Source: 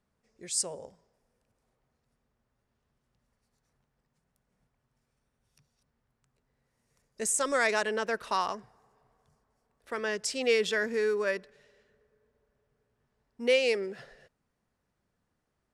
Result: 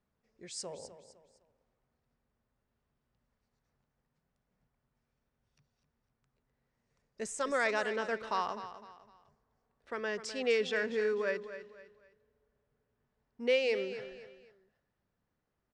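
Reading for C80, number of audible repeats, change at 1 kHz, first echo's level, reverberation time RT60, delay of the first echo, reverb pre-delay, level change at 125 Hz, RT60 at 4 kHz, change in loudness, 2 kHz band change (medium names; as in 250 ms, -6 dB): no reverb, 3, -3.5 dB, -12.0 dB, no reverb, 254 ms, no reverb, no reading, no reverb, -4.5 dB, -4.0 dB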